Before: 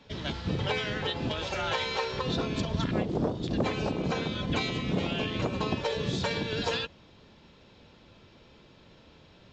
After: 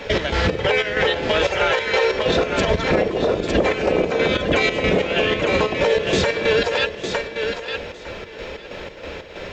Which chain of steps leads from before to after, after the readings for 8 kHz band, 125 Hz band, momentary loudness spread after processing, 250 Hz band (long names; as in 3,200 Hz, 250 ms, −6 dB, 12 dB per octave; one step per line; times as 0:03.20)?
can't be measured, +4.5 dB, 15 LU, +7.0 dB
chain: octave-band graphic EQ 125/250/500/1,000/2,000/4,000 Hz −10/−6/+8/−4/+7/−6 dB
downward compressor, threshold −35 dBFS, peak gain reduction 13.5 dB
square-wave tremolo 3.1 Hz, depth 65%, duty 55%
feedback echo with a high-pass in the loop 906 ms, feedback 17%, high-pass 210 Hz, level −8 dB
boost into a limiter +30.5 dB
level −7.5 dB